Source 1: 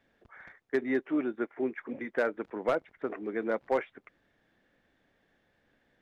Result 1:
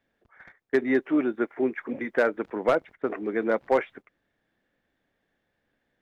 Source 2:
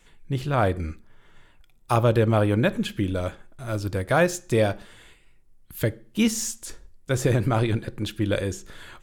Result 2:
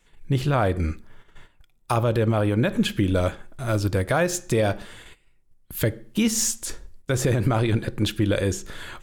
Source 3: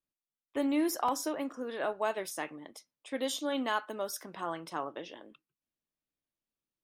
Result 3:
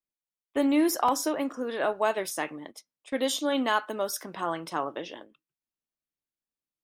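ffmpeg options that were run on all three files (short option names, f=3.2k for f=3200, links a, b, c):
-af "agate=range=-11dB:threshold=-49dB:ratio=16:detection=peak,alimiter=limit=-17.5dB:level=0:latency=1:release=135,volume=6dB"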